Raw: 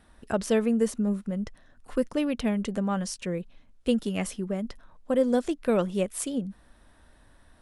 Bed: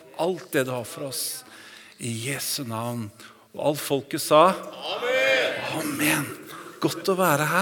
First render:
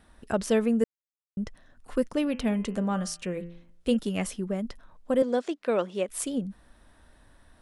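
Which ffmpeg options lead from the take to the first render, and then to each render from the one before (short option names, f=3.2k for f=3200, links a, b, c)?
-filter_complex "[0:a]asettb=1/sr,asplit=3[a][b][c];[a]atrim=end=2.224[d];[b]atrim=start=2.22:end=3.97,asetpts=PTS-STARTPTS,afade=t=in:d=0.004:c=qsin,afade=t=out:st=1.746:d=0.004:c=qsin,bandreject=f=85.71:t=h:w=4,bandreject=f=171.42:t=h:w=4,bandreject=f=257.13:t=h:w=4,bandreject=f=342.84:t=h:w=4,bandreject=f=428.55:t=h:w=4,bandreject=f=514.26:t=h:w=4,bandreject=f=599.97:t=h:w=4,bandreject=f=685.68:t=h:w=4,bandreject=f=771.39:t=h:w=4,bandreject=f=857.1:t=h:w=4,bandreject=f=942.81:t=h:w=4,bandreject=f=1.02852k:t=h:w=4,bandreject=f=1.11423k:t=h:w=4,bandreject=f=1.19994k:t=h:w=4,bandreject=f=1.28565k:t=h:w=4,bandreject=f=1.37136k:t=h:w=4,bandreject=f=1.45707k:t=h:w=4,bandreject=f=1.54278k:t=h:w=4,bandreject=f=1.62849k:t=h:w=4,bandreject=f=1.7142k:t=h:w=4,bandreject=f=1.79991k:t=h:w=4,bandreject=f=1.88562k:t=h:w=4,bandreject=f=1.97133k:t=h:w=4,bandreject=f=2.05704k:t=h:w=4,bandreject=f=2.14275k:t=h:w=4,bandreject=f=2.22846k:t=h:w=4,bandreject=f=2.31417k:t=h:w=4,bandreject=f=2.39988k:t=h:w=4,bandreject=f=2.48559k:t=h:w=4,bandreject=f=2.5713k:t=h:w=4,bandreject=f=2.65701k:t=h:w=4,bandreject=f=2.74272k:t=h:w=4,bandreject=f=2.82843k:t=h:w=4,bandreject=f=2.91414k:t=h:w=4,bandreject=f=2.99985k:t=h:w=4,bandreject=f=3.08556k:t=h:w=4,bandreject=f=3.17127k:t=h:w=4[e];[c]atrim=start=3.966[f];[d][e]acrossfade=d=0.004:c1=hsin:c2=qsin[g];[g][f]acrossfade=d=0.004:c1=qsin:c2=hsin,asettb=1/sr,asplit=3[h][i][j];[h]atrim=end=5.224[k];[i]atrim=start=5.22:end=6.09,asetpts=PTS-STARTPTS,afade=t=in:d=0.004:c=qsin,afade=t=out:st=0.866:d=0.004:c=qsin,highpass=320,lowpass=5.9k[l];[j]atrim=start=6.086[m];[k][l]acrossfade=d=0.004:c1=hsin:c2=qsin[n];[n][m]acrossfade=d=0.004:c1=qsin:c2=hsin,asplit=3[o][p][q];[o]atrim=end=0.84,asetpts=PTS-STARTPTS,afade=t=out:st=0.836:d=0.004:c=hsin[r];[p]atrim=start=0.84:end=1.37,asetpts=PTS-STARTPTS,volume=0[s];[q]atrim=start=1.37,asetpts=PTS-STARTPTS,afade=t=in:d=0.004:c=hsin[t];[r][s][t]concat=n=3:v=0:a=1"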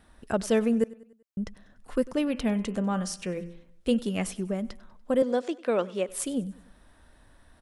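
-af "aecho=1:1:97|194|291|388:0.0891|0.0437|0.0214|0.0105"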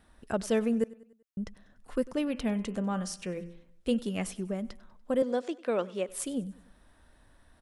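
-af "volume=-3.5dB"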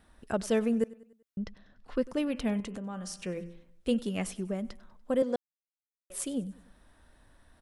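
-filter_complex "[0:a]asettb=1/sr,asplit=3[a][b][c];[a]atrim=end=1.384[d];[b]atrim=start=1.38:end=2.04,asetpts=PTS-STARTPTS,afade=t=in:d=0.004:c=qsin,afade=t=out:st=0.656:d=0.004:c=qsin,highshelf=f=6.5k:t=q:w=1.5:g=-12[e];[c]atrim=start=2.036[f];[d][e]acrossfade=d=0.004:c1=hsin:c2=qsin[g];[g][f]acrossfade=d=0.004:c1=qsin:c2=hsin,asettb=1/sr,asplit=3[h][i][j];[h]atrim=end=2.604[k];[i]atrim=start=2.6:end=3.16,asetpts=PTS-STARTPTS,afade=t=in:d=0.004:c=qsin,afade=t=out:st=0.556:d=0.004:c=qsin,acompressor=threshold=-35dB:ratio=6:attack=3.2:release=140:knee=1:detection=peak[l];[j]atrim=start=3.156[m];[k][l]acrossfade=d=0.004:c1=hsin:c2=qsin[n];[n][m]acrossfade=d=0.004:c1=qsin:c2=hsin,asplit=3[o][p][q];[o]atrim=end=5.36,asetpts=PTS-STARTPTS,afade=t=out:st=5.356:d=0.004:c=hsin[r];[p]atrim=start=5.36:end=6.1,asetpts=PTS-STARTPTS,volume=0[s];[q]atrim=start=6.1,asetpts=PTS-STARTPTS,afade=t=in:d=0.004:c=hsin[t];[r][s][t]concat=n=3:v=0:a=1"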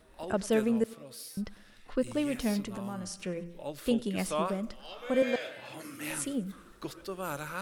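-filter_complex "[1:a]volume=-16dB[a];[0:a][a]amix=inputs=2:normalize=0"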